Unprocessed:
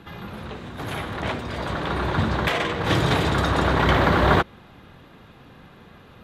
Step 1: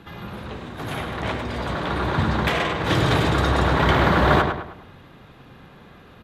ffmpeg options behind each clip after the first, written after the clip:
ffmpeg -i in.wav -filter_complex "[0:a]asplit=2[link_01][link_02];[link_02]adelay=104,lowpass=frequency=3500:poles=1,volume=-5.5dB,asplit=2[link_03][link_04];[link_04]adelay=104,lowpass=frequency=3500:poles=1,volume=0.42,asplit=2[link_05][link_06];[link_06]adelay=104,lowpass=frequency=3500:poles=1,volume=0.42,asplit=2[link_07][link_08];[link_08]adelay=104,lowpass=frequency=3500:poles=1,volume=0.42,asplit=2[link_09][link_10];[link_10]adelay=104,lowpass=frequency=3500:poles=1,volume=0.42[link_11];[link_01][link_03][link_05][link_07][link_09][link_11]amix=inputs=6:normalize=0" out.wav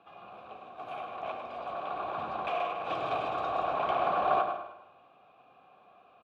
ffmpeg -i in.wav -filter_complex "[0:a]asplit=3[link_01][link_02][link_03];[link_01]bandpass=frequency=730:width_type=q:width=8,volume=0dB[link_04];[link_02]bandpass=frequency=1090:width_type=q:width=8,volume=-6dB[link_05];[link_03]bandpass=frequency=2440:width_type=q:width=8,volume=-9dB[link_06];[link_04][link_05][link_06]amix=inputs=3:normalize=0,aecho=1:1:155|310|465:0.224|0.0627|0.0176" out.wav

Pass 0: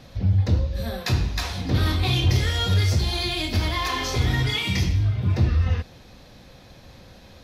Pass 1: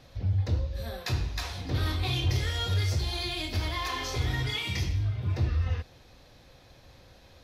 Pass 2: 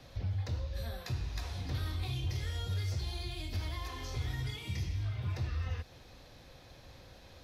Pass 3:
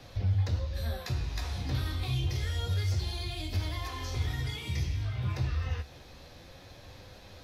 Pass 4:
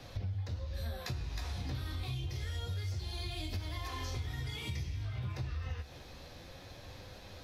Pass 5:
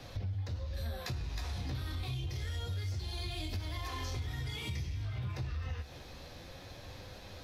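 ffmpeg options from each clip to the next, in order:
ffmpeg -i in.wav -af "equalizer=frequency=200:width=2.4:gain=-8,volume=-6.5dB" out.wav
ffmpeg -i in.wav -filter_complex "[0:a]acrossover=split=170|660|6200[link_01][link_02][link_03][link_04];[link_01]acompressor=threshold=-34dB:ratio=4[link_05];[link_02]acompressor=threshold=-52dB:ratio=4[link_06];[link_03]acompressor=threshold=-48dB:ratio=4[link_07];[link_04]acompressor=threshold=-58dB:ratio=4[link_08];[link_05][link_06][link_07][link_08]amix=inputs=4:normalize=0" out.wav
ffmpeg -i in.wav -af "flanger=delay=9.8:depth=5.7:regen=53:speed=0.28:shape=sinusoidal,volume=8.5dB" out.wav
ffmpeg -i in.wav -af "acompressor=threshold=-35dB:ratio=6" out.wav
ffmpeg -i in.wav -af "asoftclip=type=tanh:threshold=-29.5dB,volume=1.5dB" out.wav

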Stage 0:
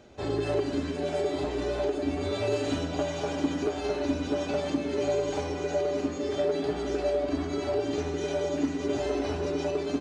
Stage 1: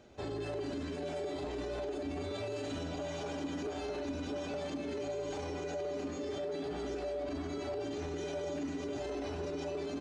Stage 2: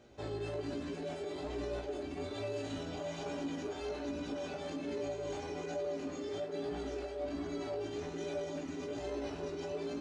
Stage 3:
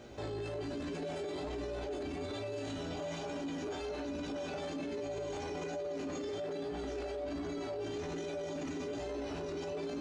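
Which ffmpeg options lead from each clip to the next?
ffmpeg -i in.wav -af "alimiter=level_in=2dB:limit=-24dB:level=0:latency=1:release=21,volume=-2dB,volume=-5dB" out.wav
ffmpeg -i in.wav -af "flanger=delay=17:depth=2.8:speed=1.2,volume=1.5dB" out.wav
ffmpeg -i in.wav -af "alimiter=level_in=17.5dB:limit=-24dB:level=0:latency=1:release=15,volume=-17.5dB,volume=9dB" out.wav

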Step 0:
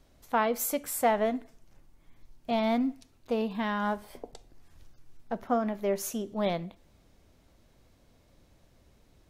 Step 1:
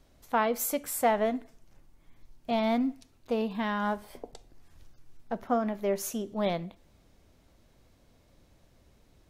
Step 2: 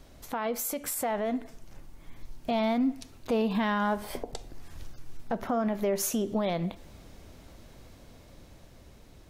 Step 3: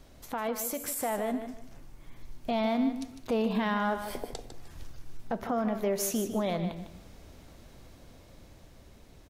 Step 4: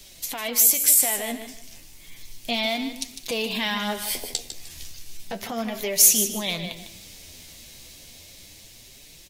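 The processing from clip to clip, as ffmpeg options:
ffmpeg -i in.wav -af anull out.wav
ffmpeg -i in.wav -filter_complex "[0:a]asplit=2[link_01][link_02];[link_02]acompressor=threshold=-37dB:ratio=6,volume=2dB[link_03];[link_01][link_03]amix=inputs=2:normalize=0,alimiter=level_in=1dB:limit=-24dB:level=0:latency=1:release=107,volume=-1dB,dynaudnorm=framelen=400:gausssize=9:maxgain=3dB,volume=2dB" out.wav
ffmpeg -i in.wav -af "aecho=1:1:152|304|456:0.335|0.0837|0.0209,volume=-1.5dB" out.wav
ffmpeg -i in.wav -filter_complex "[0:a]flanger=delay=4.8:depth=9.7:regen=38:speed=0.32:shape=triangular,acrossover=split=110[link_01][link_02];[link_02]aexciter=amount=4.4:drive=8.2:freq=2000[link_03];[link_01][link_03]amix=inputs=2:normalize=0,volume=3dB" out.wav

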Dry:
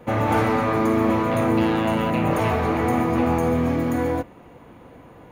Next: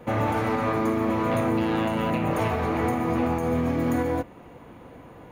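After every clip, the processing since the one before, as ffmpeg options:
ffmpeg -i in.wav -af "alimiter=limit=-15.5dB:level=0:latency=1:release=230" out.wav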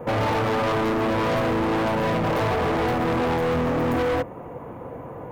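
ffmpeg -i in.wav -af "equalizer=frequency=125:width_type=o:width=1:gain=7,equalizer=frequency=500:width_type=o:width=1:gain=8,equalizer=frequency=1000:width_type=o:width=1:gain=6,equalizer=frequency=4000:width_type=o:width=1:gain=-11,equalizer=frequency=8000:width_type=o:width=1:gain=-5,asoftclip=type=hard:threshold=-24dB,volume=3dB" out.wav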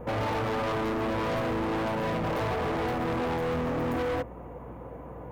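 ffmpeg -i in.wav -af "aeval=exprs='val(0)+0.0112*(sin(2*PI*60*n/s)+sin(2*PI*2*60*n/s)/2+sin(2*PI*3*60*n/s)/3+sin(2*PI*4*60*n/s)/4+sin(2*PI*5*60*n/s)/5)':channel_layout=same,volume=-6.5dB" out.wav

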